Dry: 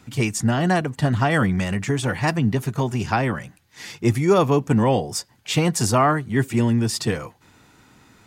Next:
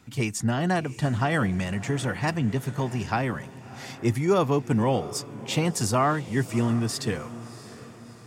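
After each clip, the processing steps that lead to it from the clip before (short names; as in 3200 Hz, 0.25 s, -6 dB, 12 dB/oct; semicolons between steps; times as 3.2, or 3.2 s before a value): diffused feedback echo 0.675 s, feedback 47%, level -16 dB; gain -5 dB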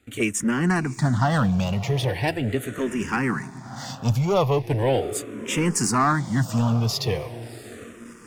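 sample leveller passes 2; endless phaser -0.39 Hz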